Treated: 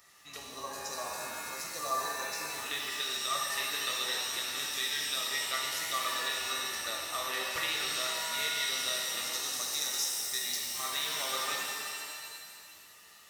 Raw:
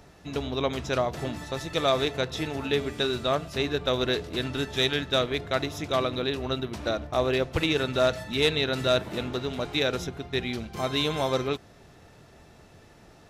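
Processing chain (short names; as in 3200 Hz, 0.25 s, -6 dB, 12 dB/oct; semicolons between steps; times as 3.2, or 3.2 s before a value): pre-emphasis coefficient 0.97; 0.37–2.5 spectral gain 1200–3900 Hz -26 dB; 9.24–10.6 resonant high shelf 4000 Hz +10.5 dB, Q 3; compressor 3:1, threshold -38 dBFS, peak gain reduction 11 dB; small resonant body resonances 1200/1900 Hz, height 16 dB, ringing for 35 ms; shimmer reverb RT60 2.1 s, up +7 st, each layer -2 dB, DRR -1.5 dB; gain +2 dB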